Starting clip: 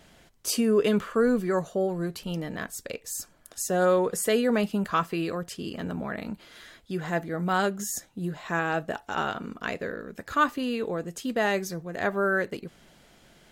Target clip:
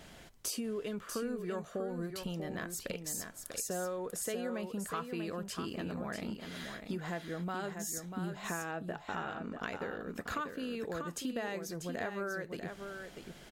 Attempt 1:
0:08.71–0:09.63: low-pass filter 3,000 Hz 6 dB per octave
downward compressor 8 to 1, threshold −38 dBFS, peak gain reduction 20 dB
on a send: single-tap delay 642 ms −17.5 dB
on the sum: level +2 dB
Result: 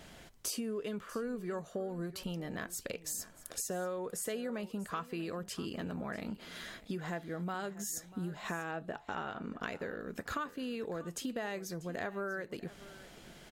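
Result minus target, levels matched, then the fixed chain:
echo-to-direct −10.5 dB
0:08.71–0:09.63: low-pass filter 3,000 Hz 6 dB per octave
downward compressor 8 to 1, threshold −38 dBFS, peak gain reduction 20 dB
on a send: single-tap delay 642 ms −7 dB
on the sum: level +2 dB

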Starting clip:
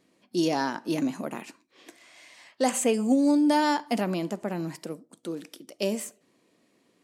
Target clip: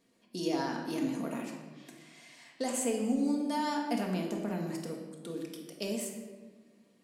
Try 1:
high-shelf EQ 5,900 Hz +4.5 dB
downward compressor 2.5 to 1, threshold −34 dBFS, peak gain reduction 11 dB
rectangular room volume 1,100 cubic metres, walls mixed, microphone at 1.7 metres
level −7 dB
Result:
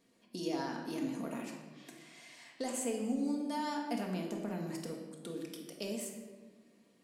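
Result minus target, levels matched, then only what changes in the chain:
downward compressor: peak gain reduction +4.5 dB
change: downward compressor 2.5 to 1, threshold −26.5 dBFS, peak gain reduction 6.5 dB

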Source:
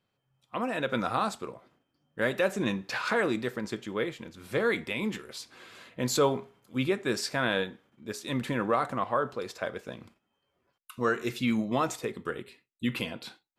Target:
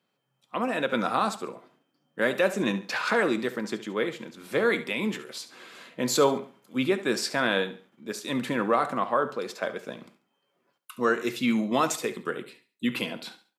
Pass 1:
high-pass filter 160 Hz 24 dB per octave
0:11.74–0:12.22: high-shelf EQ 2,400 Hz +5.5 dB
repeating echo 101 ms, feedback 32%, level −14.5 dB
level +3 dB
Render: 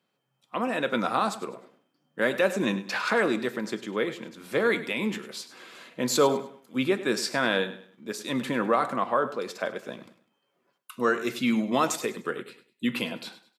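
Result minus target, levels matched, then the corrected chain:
echo 31 ms late
high-pass filter 160 Hz 24 dB per octave
0:11.74–0:12.22: high-shelf EQ 2,400 Hz +5.5 dB
repeating echo 70 ms, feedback 32%, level −14.5 dB
level +3 dB

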